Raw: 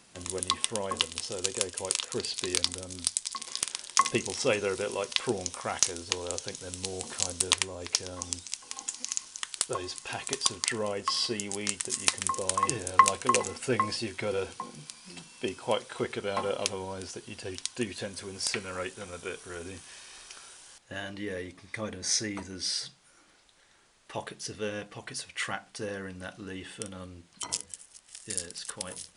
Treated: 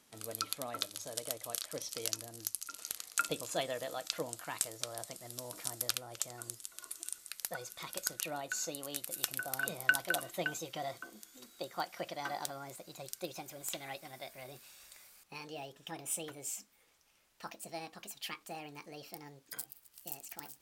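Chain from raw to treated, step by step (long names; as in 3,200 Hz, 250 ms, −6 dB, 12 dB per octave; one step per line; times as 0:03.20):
gliding playback speed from 122% → 161%
mains-hum notches 50/100 Hz
level −8.5 dB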